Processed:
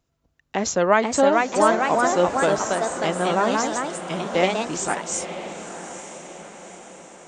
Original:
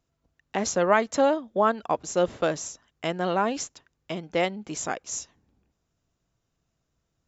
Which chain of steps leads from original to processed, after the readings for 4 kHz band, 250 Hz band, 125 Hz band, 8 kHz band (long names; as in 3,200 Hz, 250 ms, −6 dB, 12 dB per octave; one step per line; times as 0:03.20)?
+6.0 dB, +5.0 dB, +4.5 dB, can't be measured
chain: delay with pitch and tempo change per echo 546 ms, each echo +2 semitones, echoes 2
on a send: feedback delay with all-pass diffusion 901 ms, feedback 50%, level −11 dB
on the sum: level +3 dB